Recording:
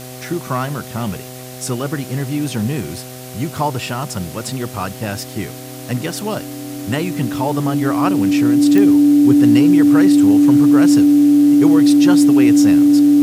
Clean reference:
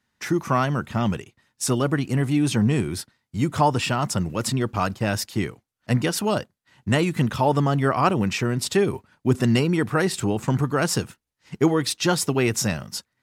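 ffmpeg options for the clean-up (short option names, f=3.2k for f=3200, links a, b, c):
-af "adeclick=t=4,bandreject=f=127.1:t=h:w=4,bandreject=f=254.2:t=h:w=4,bandreject=f=381.3:t=h:w=4,bandreject=f=508.4:t=h:w=4,bandreject=f=635.5:t=h:w=4,bandreject=f=762.6:t=h:w=4,bandreject=f=290:w=30,afwtdn=0.016"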